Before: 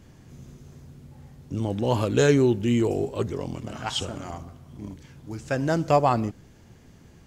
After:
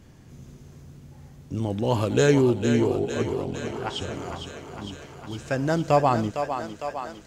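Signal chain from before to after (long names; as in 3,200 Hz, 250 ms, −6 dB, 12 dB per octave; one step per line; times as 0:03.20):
0:02.41–0:04.14: high-shelf EQ 4,100 Hz −12 dB
feedback echo with a high-pass in the loop 456 ms, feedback 74%, high-pass 340 Hz, level −7 dB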